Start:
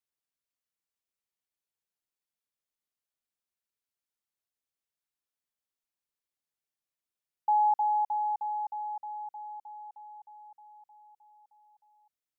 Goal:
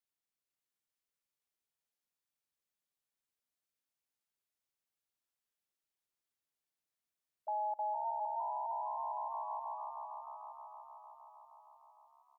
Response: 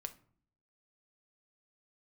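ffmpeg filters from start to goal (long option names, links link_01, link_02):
-filter_complex "[0:a]asplit=2[link_01][link_02];[link_02]asplit=6[link_03][link_04][link_05][link_06][link_07][link_08];[link_03]adelay=459,afreqshift=70,volume=-3.5dB[link_09];[link_04]adelay=918,afreqshift=140,volume=-10.6dB[link_10];[link_05]adelay=1377,afreqshift=210,volume=-17.8dB[link_11];[link_06]adelay=1836,afreqshift=280,volume=-24.9dB[link_12];[link_07]adelay=2295,afreqshift=350,volume=-32dB[link_13];[link_08]adelay=2754,afreqshift=420,volume=-39.2dB[link_14];[link_09][link_10][link_11][link_12][link_13][link_14]amix=inputs=6:normalize=0[link_15];[link_01][link_15]amix=inputs=2:normalize=0,alimiter=level_in=5.5dB:limit=-24dB:level=0:latency=1:release=50,volume=-5.5dB,asplit=2[link_16][link_17];[link_17]aecho=0:1:212|424:0.0668|0.0194[link_18];[link_16][link_18]amix=inputs=2:normalize=0,asplit=2[link_19][link_20];[link_20]asetrate=33038,aresample=44100,atempo=1.33484,volume=-9dB[link_21];[link_19][link_21]amix=inputs=2:normalize=0,volume=-3.5dB"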